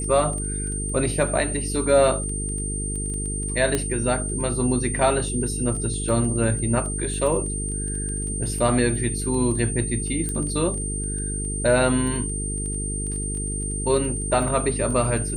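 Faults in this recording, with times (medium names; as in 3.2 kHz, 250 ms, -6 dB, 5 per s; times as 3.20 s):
buzz 50 Hz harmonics 9 -29 dBFS
crackle 12 per s -30 dBFS
whine 8.8 kHz -29 dBFS
3.75 s: pop -8 dBFS
10.29 s: pop -15 dBFS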